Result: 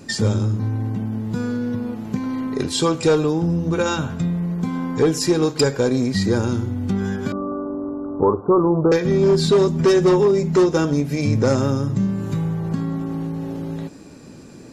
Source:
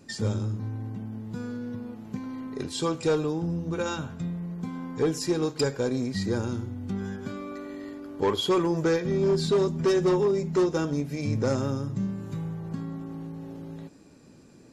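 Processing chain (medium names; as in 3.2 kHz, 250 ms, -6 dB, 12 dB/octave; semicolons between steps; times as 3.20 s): 7.32–8.92 s: steep low-pass 1.3 kHz 72 dB/octave; in parallel at +0.5 dB: compression, threshold -32 dBFS, peak gain reduction 12 dB; on the sum: trim +5.5 dB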